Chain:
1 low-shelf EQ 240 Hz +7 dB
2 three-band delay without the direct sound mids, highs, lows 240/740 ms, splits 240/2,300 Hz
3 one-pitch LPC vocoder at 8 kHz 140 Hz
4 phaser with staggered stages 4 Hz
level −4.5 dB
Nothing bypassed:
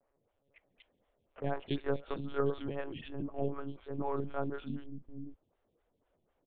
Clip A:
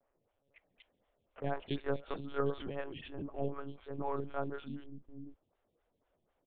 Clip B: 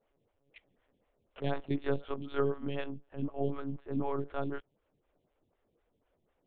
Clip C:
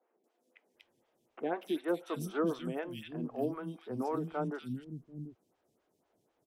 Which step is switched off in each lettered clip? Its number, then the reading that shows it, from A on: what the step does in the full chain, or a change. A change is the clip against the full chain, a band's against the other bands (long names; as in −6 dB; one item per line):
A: 1, 250 Hz band −2.5 dB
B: 2, change in momentary loudness spread −6 LU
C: 3, 250 Hz band +3.0 dB